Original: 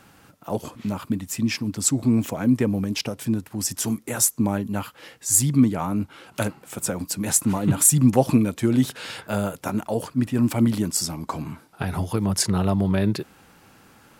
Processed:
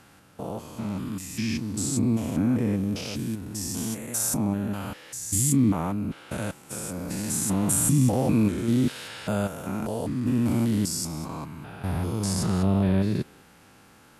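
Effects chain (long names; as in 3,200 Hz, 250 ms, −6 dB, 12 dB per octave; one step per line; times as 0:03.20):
spectrum averaged block by block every 200 ms
Ogg Vorbis 48 kbit/s 32,000 Hz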